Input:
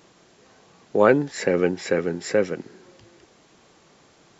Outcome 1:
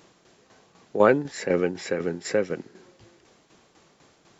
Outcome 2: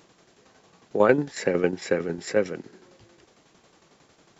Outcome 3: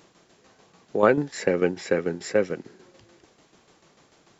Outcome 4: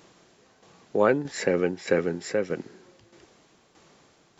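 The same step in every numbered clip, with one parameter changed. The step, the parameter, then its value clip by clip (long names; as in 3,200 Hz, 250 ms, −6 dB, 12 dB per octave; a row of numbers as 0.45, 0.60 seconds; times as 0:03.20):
shaped tremolo, speed: 4, 11, 6.8, 1.6 Hertz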